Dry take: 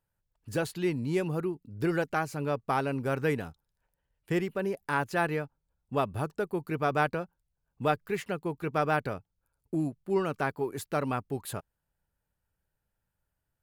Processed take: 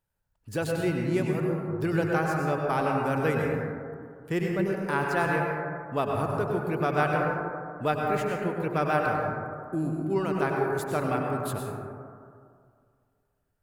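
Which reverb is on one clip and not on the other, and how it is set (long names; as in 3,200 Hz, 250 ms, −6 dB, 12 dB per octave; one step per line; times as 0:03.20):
dense smooth reverb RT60 2.2 s, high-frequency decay 0.25×, pre-delay 85 ms, DRR −0.5 dB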